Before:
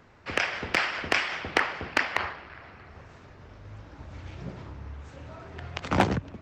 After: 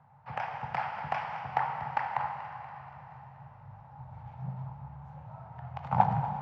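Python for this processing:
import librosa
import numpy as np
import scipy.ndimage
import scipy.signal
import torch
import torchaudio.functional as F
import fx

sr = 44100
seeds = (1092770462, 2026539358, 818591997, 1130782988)

p1 = fx.double_bandpass(x, sr, hz=340.0, octaves=2.6)
p2 = p1 + fx.echo_feedback(p1, sr, ms=239, feedback_pct=59, wet_db=-14.5, dry=0)
p3 = fx.rev_plate(p2, sr, seeds[0], rt60_s=3.2, hf_ratio=1.0, predelay_ms=0, drr_db=5.0)
y = F.gain(torch.from_numpy(p3), 7.0).numpy()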